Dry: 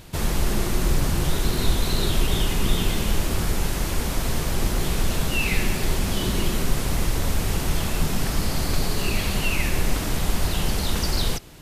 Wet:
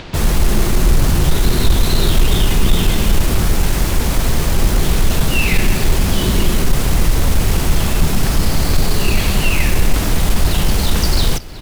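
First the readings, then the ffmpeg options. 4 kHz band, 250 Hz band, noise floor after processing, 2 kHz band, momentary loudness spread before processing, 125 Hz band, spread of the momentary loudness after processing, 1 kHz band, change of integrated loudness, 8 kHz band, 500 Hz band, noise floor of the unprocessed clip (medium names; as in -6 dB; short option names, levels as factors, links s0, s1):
+6.5 dB, +7.5 dB, -18 dBFS, +6.5 dB, 2 LU, +9.0 dB, 2 LU, +6.5 dB, +8.0 dB, +6.5 dB, +7.0 dB, -27 dBFS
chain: -filter_complex "[0:a]lowshelf=f=140:g=3.5,acrossover=split=250|5300[s0][s1][s2];[s1]acompressor=mode=upward:threshold=0.0158:ratio=2.5[s3];[s2]acrusher=bits=5:mix=0:aa=0.000001[s4];[s0][s3][s4]amix=inputs=3:normalize=0,asoftclip=type=tanh:threshold=0.335,aecho=1:1:366:0.0944,volume=2.37"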